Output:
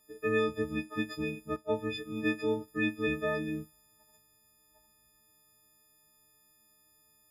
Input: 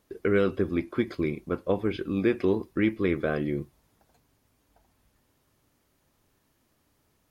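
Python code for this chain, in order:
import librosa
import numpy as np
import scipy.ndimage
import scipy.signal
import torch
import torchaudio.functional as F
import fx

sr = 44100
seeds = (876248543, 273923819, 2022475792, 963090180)

y = fx.freq_snap(x, sr, grid_st=6)
y = fx.band_widen(y, sr, depth_pct=40, at=(1.56, 2.68))
y = y * 10.0 ** (-7.0 / 20.0)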